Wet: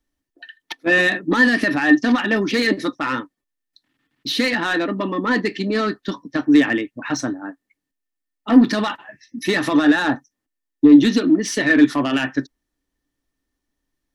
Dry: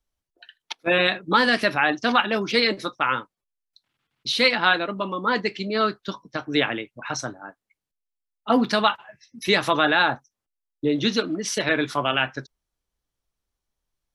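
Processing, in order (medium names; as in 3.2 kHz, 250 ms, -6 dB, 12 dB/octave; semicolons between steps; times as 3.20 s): peak limiter -12 dBFS, peak gain reduction 7 dB; saturation -18.5 dBFS, distortion -14 dB; small resonant body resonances 280/1800 Hz, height 17 dB, ringing for 55 ms; trim +2.5 dB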